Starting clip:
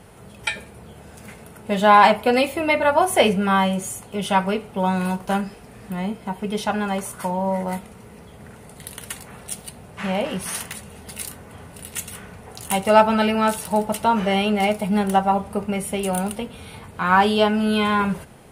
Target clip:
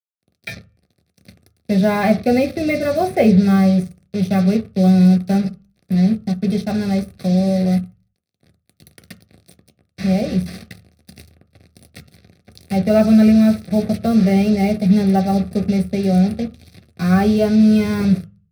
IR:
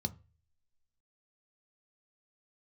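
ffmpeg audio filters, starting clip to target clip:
-filter_complex "[0:a]acrossover=split=230|1600|2600[a][b][c][d];[d]acompressor=threshold=-43dB:ratio=16[e];[a][b][c][e]amix=inputs=4:normalize=0,acrusher=bits=4:mix=0:aa=0.5,asuperstop=centerf=930:order=4:qfactor=1.9[f];[1:a]atrim=start_sample=2205,afade=t=out:st=0.41:d=0.01,atrim=end_sample=18522[g];[f][g]afir=irnorm=-1:irlink=0,volume=-1.5dB"

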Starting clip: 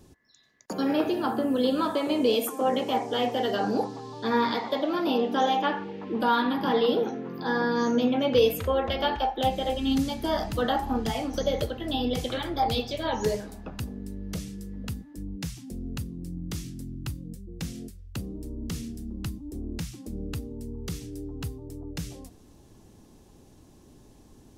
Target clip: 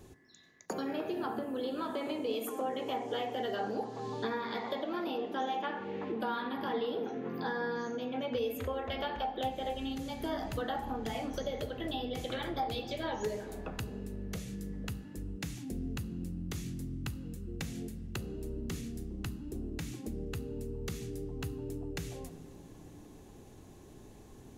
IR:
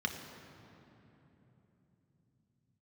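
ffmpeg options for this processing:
-filter_complex "[0:a]acompressor=threshold=-35dB:ratio=5,asplit=2[a][b];[1:a]atrim=start_sample=2205,asetrate=70560,aresample=44100[c];[b][c]afir=irnorm=-1:irlink=0,volume=-8.5dB[d];[a][d]amix=inputs=2:normalize=0,volume=1dB"

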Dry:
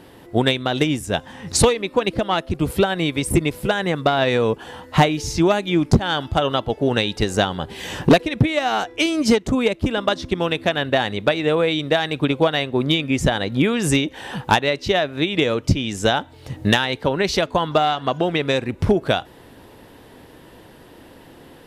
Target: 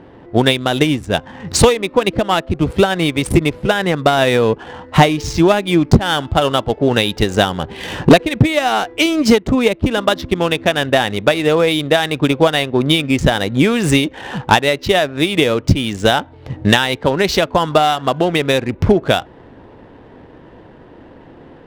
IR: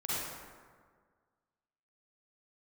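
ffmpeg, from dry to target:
-af "adynamicsmooth=sensitivity=6.5:basefreq=1.6k,volume=5dB"

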